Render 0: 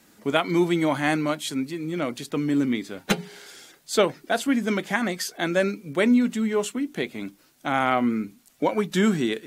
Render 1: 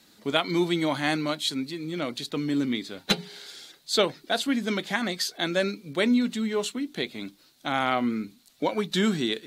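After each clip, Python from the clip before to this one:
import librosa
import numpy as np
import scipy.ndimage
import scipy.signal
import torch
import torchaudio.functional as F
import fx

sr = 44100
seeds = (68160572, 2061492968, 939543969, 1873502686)

y = fx.peak_eq(x, sr, hz=4000.0, db=12.0, octaves=0.61)
y = y * librosa.db_to_amplitude(-3.5)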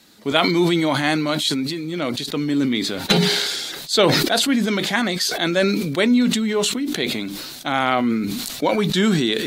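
y = fx.sustainer(x, sr, db_per_s=29.0)
y = y * librosa.db_to_amplitude(5.5)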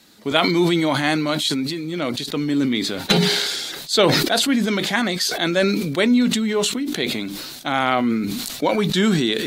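y = fx.end_taper(x, sr, db_per_s=120.0)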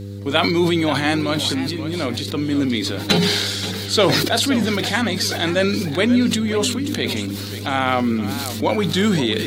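y = fx.dmg_buzz(x, sr, base_hz=100.0, harmonics=5, level_db=-31.0, tilt_db=-6, odd_only=False)
y = fx.echo_warbled(y, sr, ms=527, feedback_pct=32, rate_hz=2.8, cents=157, wet_db=-12.5)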